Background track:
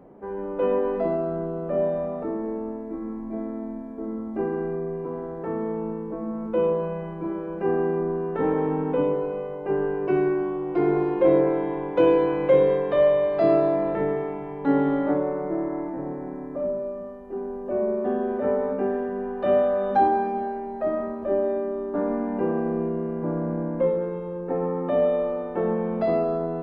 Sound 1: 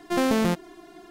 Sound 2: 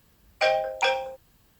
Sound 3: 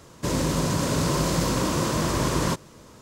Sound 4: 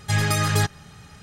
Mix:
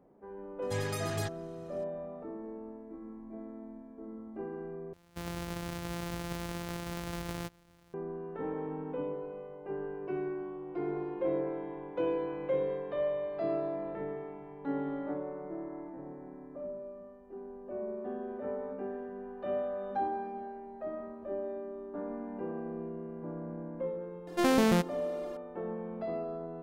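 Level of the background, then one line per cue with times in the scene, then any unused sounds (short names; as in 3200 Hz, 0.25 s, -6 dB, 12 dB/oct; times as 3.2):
background track -13.5 dB
0.62 add 4 -15 dB
4.93 replace with 3 -14.5 dB + sample sorter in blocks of 256 samples
24.27 add 1 -3 dB
not used: 2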